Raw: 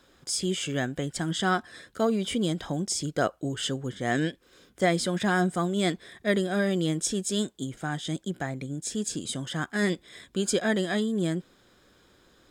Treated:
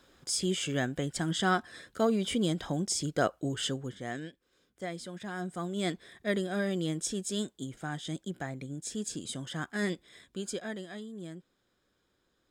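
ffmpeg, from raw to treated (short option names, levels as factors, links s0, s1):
-af "volume=2.24,afade=t=out:st=3.61:d=0.6:silence=0.237137,afade=t=in:st=5.33:d=0.57:silence=0.354813,afade=t=out:st=9.8:d=1.08:silence=0.316228"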